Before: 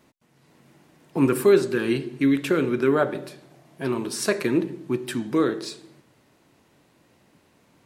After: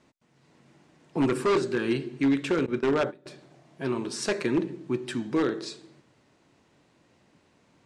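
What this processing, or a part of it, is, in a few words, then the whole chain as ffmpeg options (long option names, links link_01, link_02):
synthesiser wavefolder: -filter_complex "[0:a]asettb=1/sr,asplit=3[link_01][link_02][link_03];[link_01]atrim=end=2.664[link_04];[link_02]atrim=start=2.66:end=3.26,asetpts=PTS-STARTPTS,afade=type=in:duration=0.004:curve=qsin,afade=type=out:start_time=0.596:duration=0.004:curve=qsin,agate=range=-20dB:threshold=-24dB:ratio=16:detection=peak[link_05];[link_03]atrim=start=3.256[link_06];[link_04][link_05]acrossfade=duration=0.004:curve1=hsin:curve2=qsin[link_07];[link_07][link_06]acrossfade=duration=0.004:curve1=qsin:curve2=hsin,aeval=exprs='0.2*(abs(mod(val(0)/0.2+3,4)-2)-1)':channel_layout=same,lowpass=frequency=8300:width=0.5412,lowpass=frequency=8300:width=1.3066,volume=-3dB"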